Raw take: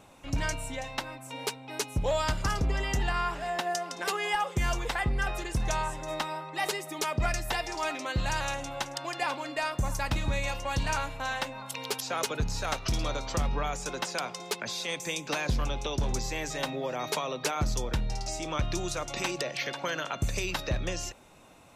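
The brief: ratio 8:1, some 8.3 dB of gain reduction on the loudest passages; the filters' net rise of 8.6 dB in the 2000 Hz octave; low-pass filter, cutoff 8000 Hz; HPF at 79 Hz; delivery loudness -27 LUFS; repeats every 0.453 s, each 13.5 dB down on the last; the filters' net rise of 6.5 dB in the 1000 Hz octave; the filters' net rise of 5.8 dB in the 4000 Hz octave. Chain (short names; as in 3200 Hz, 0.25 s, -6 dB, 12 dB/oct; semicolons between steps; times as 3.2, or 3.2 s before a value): HPF 79 Hz; LPF 8000 Hz; bell 1000 Hz +6 dB; bell 2000 Hz +8 dB; bell 4000 Hz +4.5 dB; compressor 8:1, threshold -28 dBFS; feedback echo 0.453 s, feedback 21%, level -13.5 dB; gain +5 dB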